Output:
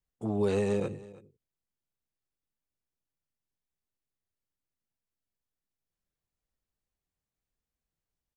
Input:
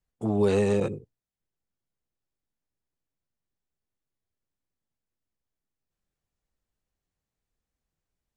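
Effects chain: delay 325 ms -19.5 dB; trim -5 dB

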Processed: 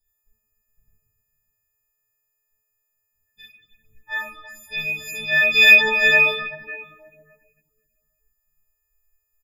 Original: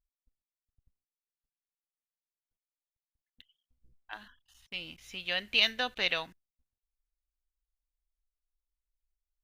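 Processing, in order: partials quantised in pitch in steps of 6 st; hum notches 50/100 Hz; early reflections 11 ms -11 dB, 21 ms -9.5 dB; reverberation RT60 1.8 s, pre-delay 4 ms, DRR -10.5 dB; reverb removal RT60 0.59 s

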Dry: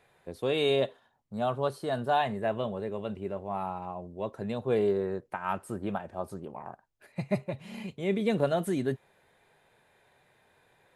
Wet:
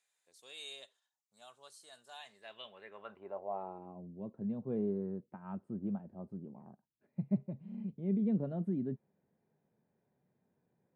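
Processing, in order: 4.38–5.56 s: dynamic bell 1.2 kHz, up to +3 dB, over -43 dBFS, Q 0.95; band-pass sweep 7.1 kHz -> 200 Hz, 2.20–4.07 s

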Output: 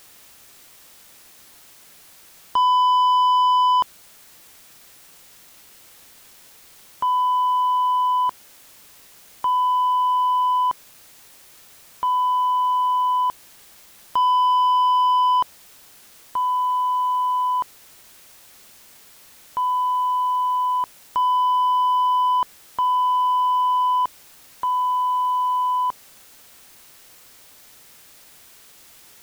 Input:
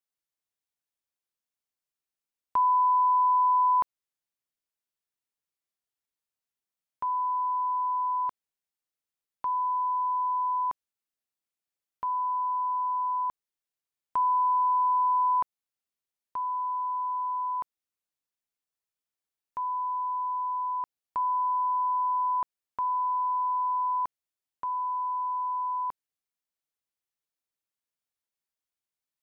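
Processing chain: in parallel at -8 dB: word length cut 8-bit, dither triangular; on the sum: saturation -22 dBFS, distortion -14 dB; trim +7.5 dB

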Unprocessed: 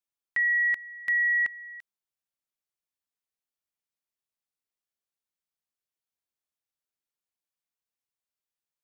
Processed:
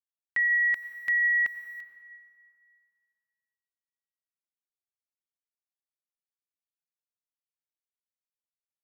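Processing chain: small samples zeroed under -53 dBFS; reverberation RT60 2.4 s, pre-delay 78 ms, DRR 12 dB

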